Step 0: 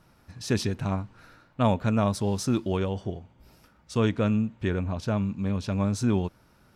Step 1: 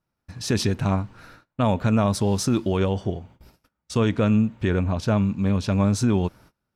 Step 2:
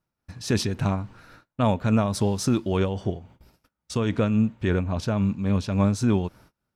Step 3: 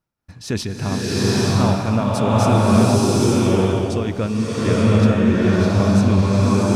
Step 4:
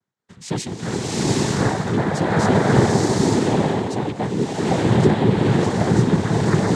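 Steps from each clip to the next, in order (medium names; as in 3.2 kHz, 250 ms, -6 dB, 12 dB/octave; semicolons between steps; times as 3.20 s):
gate -53 dBFS, range -27 dB; peak limiter -18 dBFS, peak gain reduction 6.5 dB; trim +6 dB
tremolo 3.6 Hz, depth 44%
swelling reverb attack 860 ms, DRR -8.5 dB
noise-vocoded speech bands 6; trim -1 dB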